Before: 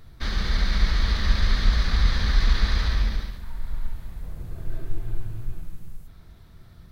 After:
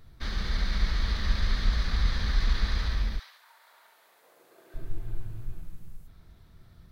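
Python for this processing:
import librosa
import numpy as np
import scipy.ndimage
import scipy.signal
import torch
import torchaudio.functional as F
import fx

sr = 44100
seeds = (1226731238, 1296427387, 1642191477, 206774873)

y = fx.highpass(x, sr, hz=fx.line((3.18, 800.0), (4.74, 340.0)), slope=24, at=(3.18, 4.74), fade=0.02)
y = F.gain(torch.from_numpy(y), -5.5).numpy()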